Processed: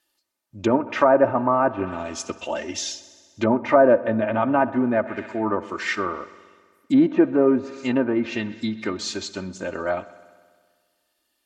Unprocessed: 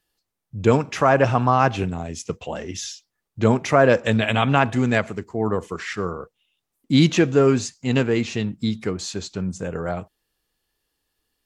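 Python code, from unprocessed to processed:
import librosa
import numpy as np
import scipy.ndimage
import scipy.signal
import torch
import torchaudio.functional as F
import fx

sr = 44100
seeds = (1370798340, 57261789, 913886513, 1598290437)

p1 = np.clip(x, -10.0 ** (-12.5 / 20.0), 10.0 ** (-12.5 / 20.0))
p2 = x + (p1 * 10.0 ** (-11.5 / 20.0))
p3 = fx.dynamic_eq(p2, sr, hz=1600.0, q=1.1, threshold_db=-29.0, ratio=4.0, max_db=5)
p4 = p3 + fx.echo_heads(p3, sr, ms=64, heads='first and second', feedback_pct=67, wet_db=-23.0, dry=0)
p5 = fx.env_lowpass_down(p4, sr, base_hz=750.0, full_db=-13.0)
p6 = fx.highpass(p5, sr, hz=370.0, slope=6)
y = p6 + 0.71 * np.pad(p6, (int(3.3 * sr / 1000.0), 0))[:len(p6)]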